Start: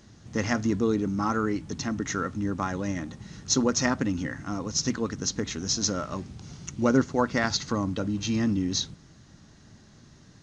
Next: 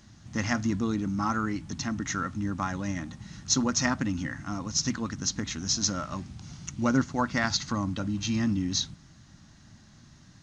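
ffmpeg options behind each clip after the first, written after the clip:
ffmpeg -i in.wav -af "equalizer=frequency=440:width_type=o:width=0.63:gain=-12.5" out.wav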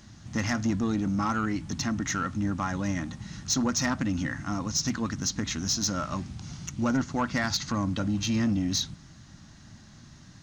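ffmpeg -i in.wav -filter_complex "[0:a]asplit=2[link_01][link_02];[link_02]alimiter=limit=-21dB:level=0:latency=1:release=180,volume=1dB[link_03];[link_01][link_03]amix=inputs=2:normalize=0,asoftclip=type=tanh:threshold=-15.5dB,volume=-3dB" out.wav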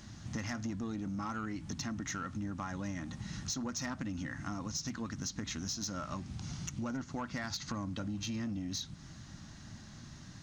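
ffmpeg -i in.wav -af "acompressor=threshold=-37dB:ratio=5" out.wav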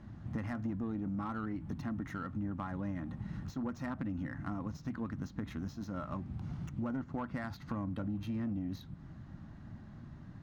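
ffmpeg -i in.wav -af "adynamicsmooth=sensitivity=1.5:basefreq=1400,aexciter=amount=4.7:drive=7.9:freq=8400,volume=1.5dB" out.wav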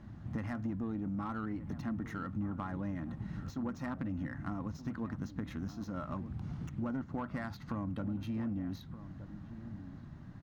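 ffmpeg -i in.wav -filter_complex "[0:a]asplit=2[link_01][link_02];[link_02]adelay=1224,volume=-13dB,highshelf=frequency=4000:gain=-27.6[link_03];[link_01][link_03]amix=inputs=2:normalize=0" out.wav

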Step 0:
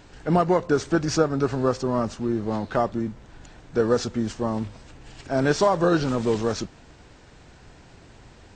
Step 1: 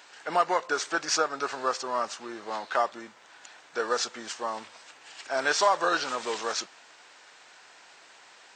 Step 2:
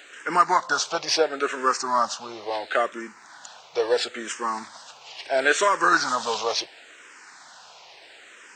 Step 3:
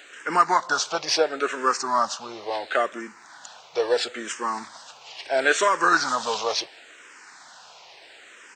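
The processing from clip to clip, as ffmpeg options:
ffmpeg -i in.wav -af "highpass=950,volume=3.5dB" out.wav
ffmpeg -i in.wav -filter_complex "[0:a]asplit=2[link_01][link_02];[link_02]afreqshift=-0.73[link_03];[link_01][link_03]amix=inputs=2:normalize=1,volume=8.5dB" out.wav
ffmpeg -i in.wav -filter_complex "[0:a]asplit=2[link_01][link_02];[link_02]adelay=160,highpass=300,lowpass=3400,asoftclip=type=hard:threshold=-13.5dB,volume=-29dB[link_03];[link_01][link_03]amix=inputs=2:normalize=0" out.wav

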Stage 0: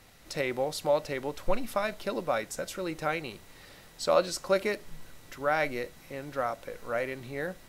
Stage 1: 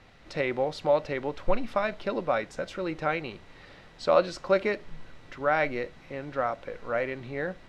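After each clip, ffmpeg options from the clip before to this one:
ffmpeg -i in.wav -af "lowpass=3400,volume=2.5dB" out.wav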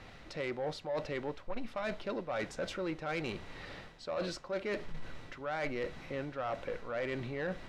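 ffmpeg -i in.wav -af "areverse,acompressor=threshold=-34dB:ratio=12,areverse,asoftclip=type=tanh:threshold=-32.5dB,volume=3.5dB" out.wav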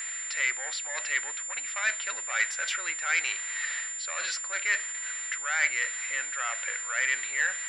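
ffmpeg -i in.wav -af "highpass=frequency=1800:width_type=q:width=3,aeval=exprs='val(0)+0.00794*sin(2*PI*7200*n/s)':channel_layout=same,volume=8.5dB" out.wav

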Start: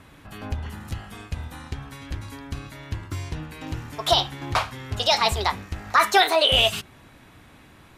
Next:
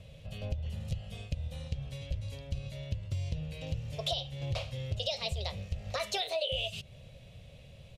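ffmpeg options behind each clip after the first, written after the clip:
ffmpeg -i in.wav -af "firequalizer=gain_entry='entry(150,0);entry(300,-24);entry(540,3);entry(860,-21);entry(1500,-24);entry(2700,-4);entry(13000,-17)':delay=0.05:min_phase=1,acompressor=threshold=-33dB:ratio=8,volume=2.5dB" out.wav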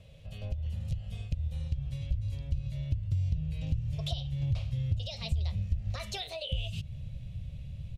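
ffmpeg -i in.wav -af "asubboost=boost=9:cutoff=160,acompressor=threshold=-27dB:ratio=2,volume=-3.5dB" out.wav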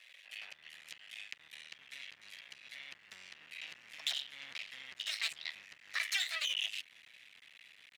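ffmpeg -i in.wav -af "aeval=exprs='max(val(0),0)':channel_layout=same,highpass=frequency=1900:width_type=q:width=4.2,volume=5.5dB" out.wav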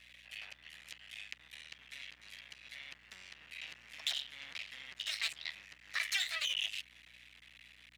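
ffmpeg -i in.wav -af "aeval=exprs='val(0)+0.000282*(sin(2*PI*60*n/s)+sin(2*PI*2*60*n/s)/2+sin(2*PI*3*60*n/s)/3+sin(2*PI*4*60*n/s)/4+sin(2*PI*5*60*n/s)/5)':channel_layout=same" out.wav

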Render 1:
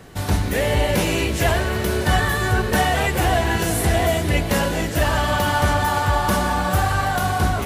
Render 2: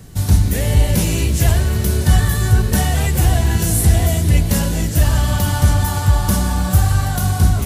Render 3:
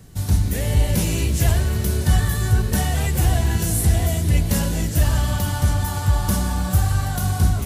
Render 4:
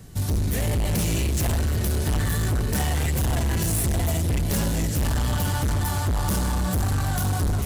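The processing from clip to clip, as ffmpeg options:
ffmpeg -i in.wav -af "bass=frequency=250:gain=15,treble=frequency=4000:gain=13,volume=-6dB" out.wav
ffmpeg -i in.wav -af "dynaudnorm=framelen=150:gausssize=5:maxgain=11.5dB,volume=-6dB" out.wav
ffmpeg -i in.wav -af "asoftclip=type=hard:threshold=-21.5dB,volume=1dB" out.wav

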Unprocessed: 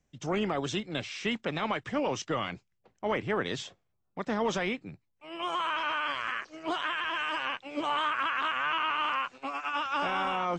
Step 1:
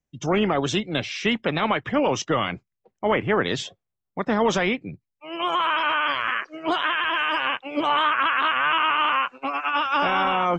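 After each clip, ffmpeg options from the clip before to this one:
ffmpeg -i in.wav -af "afftdn=noise_reduction=18:noise_floor=-51,volume=8.5dB" out.wav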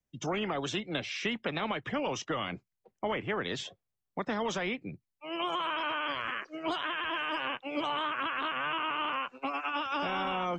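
ffmpeg -i in.wav -filter_complex "[0:a]acrossover=split=180|650|2900[link_01][link_02][link_03][link_04];[link_01]acompressor=threshold=-44dB:ratio=4[link_05];[link_02]acompressor=threshold=-33dB:ratio=4[link_06];[link_03]acompressor=threshold=-33dB:ratio=4[link_07];[link_04]acompressor=threshold=-38dB:ratio=4[link_08];[link_05][link_06][link_07][link_08]amix=inputs=4:normalize=0,volume=-3dB" out.wav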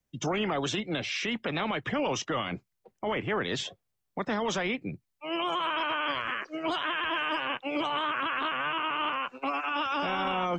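ffmpeg -i in.wav -af "alimiter=level_in=2.5dB:limit=-24dB:level=0:latency=1:release=13,volume=-2.5dB,volume=5dB" out.wav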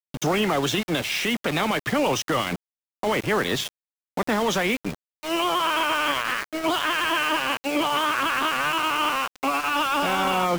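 ffmpeg -i in.wav -af "aeval=exprs='val(0)*gte(abs(val(0)),0.0168)':channel_layout=same,volume=7dB" out.wav

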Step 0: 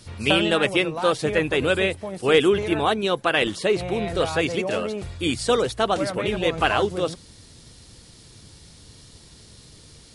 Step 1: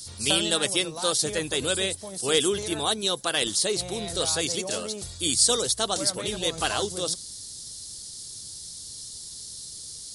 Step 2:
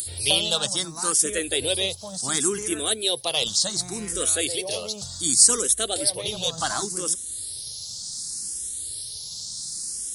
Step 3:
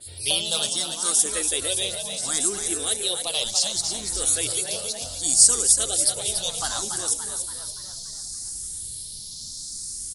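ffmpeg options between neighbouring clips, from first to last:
ffmpeg -i in.wav -af "aexciter=amount=10.1:drive=3.7:freq=3700,volume=-7.5dB" out.wav
ffmpeg -i in.wav -filter_complex "[0:a]crystalizer=i=1:c=0,acompressor=mode=upward:threshold=-26dB:ratio=2.5,asplit=2[link_01][link_02];[link_02]afreqshift=0.68[link_03];[link_01][link_03]amix=inputs=2:normalize=1,volume=2dB" out.wav
ffmpeg -i in.wav -filter_complex "[0:a]asubboost=boost=9:cutoff=52,asplit=2[link_01][link_02];[link_02]asplit=7[link_03][link_04][link_05][link_06][link_07][link_08][link_09];[link_03]adelay=286,afreqshift=71,volume=-6.5dB[link_10];[link_04]adelay=572,afreqshift=142,volume=-12dB[link_11];[link_05]adelay=858,afreqshift=213,volume=-17.5dB[link_12];[link_06]adelay=1144,afreqshift=284,volume=-23dB[link_13];[link_07]adelay=1430,afreqshift=355,volume=-28.6dB[link_14];[link_08]adelay=1716,afreqshift=426,volume=-34.1dB[link_15];[link_09]adelay=2002,afreqshift=497,volume=-39.6dB[link_16];[link_10][link_11][link_12][link_13][link_14][link_15][link_16]amix=inputs=7:normalize=0[link_17];[link_01][link_17]amix=inputs=2:normalize=0,adynamicequalizer=threshold=0.02:dfrequency=3800:dqfactor=0.7:tfrequency=3800:tqfactor=0.7:attack=5:release=100:ratio=0.375:range=3:mode=boostabove:tftype=highshelf,volume=-5dB" out.wav

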